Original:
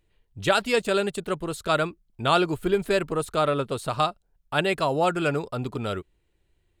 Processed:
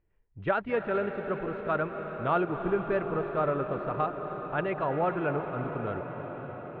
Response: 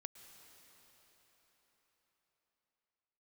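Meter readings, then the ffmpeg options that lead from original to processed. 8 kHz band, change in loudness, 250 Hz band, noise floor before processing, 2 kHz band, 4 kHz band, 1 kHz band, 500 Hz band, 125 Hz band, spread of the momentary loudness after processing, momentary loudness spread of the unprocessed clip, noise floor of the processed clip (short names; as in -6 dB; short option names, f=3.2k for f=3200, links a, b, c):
under -40 dB, -5.5 dB, -4.5 dB, -70 dBFS, -6.5 dB, under -20 dB, -4.5 dB, -4.0 dB, -4.0 dB, 8 LU, 8 LU, -63 dBFS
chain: -filter_complex "[0:a]lowpass=f=2k:w=0.5412,lowpass=f=2k:w=1.3066[a];[1:a]atrim=start_sample=2205,asetrate=22932,aresample=44100[b];[a][b]afir=irnorm=-1:irlink=0,volume=-3dB"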